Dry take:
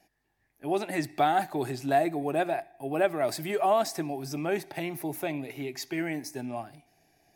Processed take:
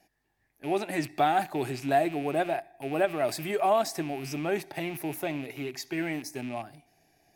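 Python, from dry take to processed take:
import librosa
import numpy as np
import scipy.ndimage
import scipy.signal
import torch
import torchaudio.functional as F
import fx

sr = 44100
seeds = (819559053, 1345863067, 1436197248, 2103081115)

y = fx.rattle_buzz(x, sr, strikes_db=-46.0, level_db=-34.0)
y = fx.end_taper(y, sr, db_per_s=400.0)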